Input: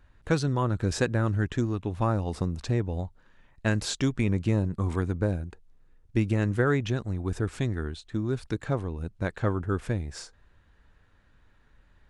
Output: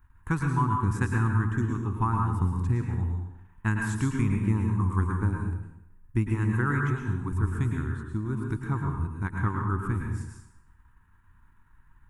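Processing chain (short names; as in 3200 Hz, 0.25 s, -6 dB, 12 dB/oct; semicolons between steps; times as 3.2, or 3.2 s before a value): EQ curve 120 Hz 0 dB, 220 Hz -3 dB, 370 Hz -7 dB, 570 Hz -28 dB, 940 Hz +4 dB, 2500 Hz -8 dB, 4400 Hz -18 dB, 11000 Hz +6 dB; transient shaper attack +2 dB, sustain -6 dB; plate-style reverb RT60 0.79 s, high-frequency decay 0.85×, pre-delay 95 ms, DRR 1 dB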